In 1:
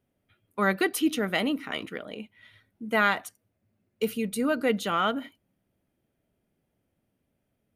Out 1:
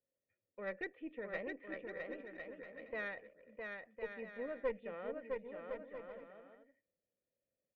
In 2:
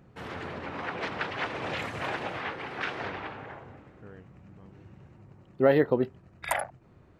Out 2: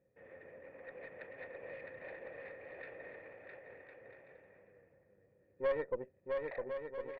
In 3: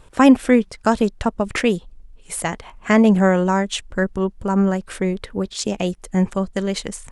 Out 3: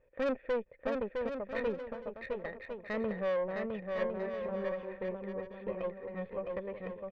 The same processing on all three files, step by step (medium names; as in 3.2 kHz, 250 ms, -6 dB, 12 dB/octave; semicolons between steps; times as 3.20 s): cascade formant filter e; valve stage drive 24 dB, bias 0.55; bouncing-ball echo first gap 660 ms, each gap 0.6×, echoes 5; trim -3.5 dB